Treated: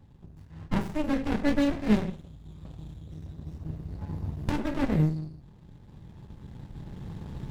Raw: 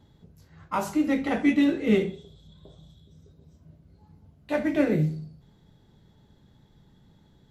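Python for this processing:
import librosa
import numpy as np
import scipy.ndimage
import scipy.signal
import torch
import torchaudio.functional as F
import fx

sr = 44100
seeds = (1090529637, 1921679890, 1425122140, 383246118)

y = fx.recorder_agc(x, sr, target_db=-19.0, rise_db_per_s=8.0, max_gain_db=30)
y = y + 0.63 * np.pad(y, (int(1.1 * sr / 1000.0), 0))[:len(y)]
y = fx.running_max(y, sr, window=65)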